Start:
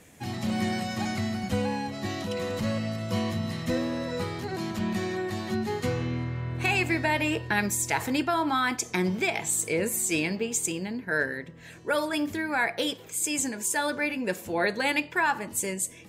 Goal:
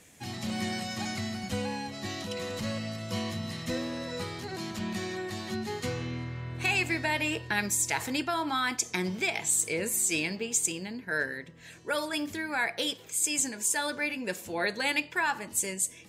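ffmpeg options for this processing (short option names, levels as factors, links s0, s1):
-af "equalizer=f=6000:t=o:w=2.9:g=7,volume=0.531"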